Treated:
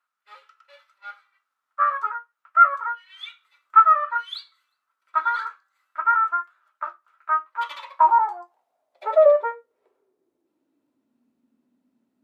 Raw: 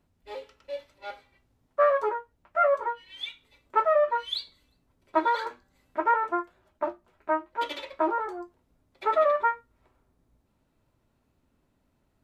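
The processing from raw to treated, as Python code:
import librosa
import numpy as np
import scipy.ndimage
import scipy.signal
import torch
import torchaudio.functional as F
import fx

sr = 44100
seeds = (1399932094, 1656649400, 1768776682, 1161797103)

y = fx.rider(x, sr, range_db=3, speed_s=2.0)
y = fx.filter_sweep_highpass(y, sr, from_hz=1300.0, to_hz=240.0, start_s=7.36, end_s=11.21, q=7.3)
y = F.gain(torch.from_numpy(y), -4.0).numpy()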